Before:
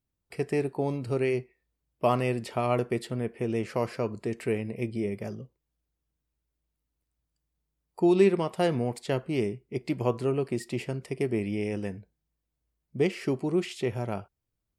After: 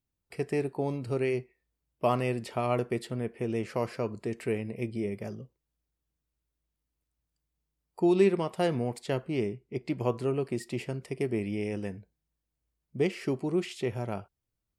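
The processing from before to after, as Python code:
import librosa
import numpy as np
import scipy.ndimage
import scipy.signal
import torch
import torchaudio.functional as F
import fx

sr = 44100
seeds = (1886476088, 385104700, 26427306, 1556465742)

y = fx.high_shelf(x, sr, hz=8300.0, db=-10.0, at=(9.28, 10.0))
y = F.gain(torch.from_numpy(y), -2.0).numpy()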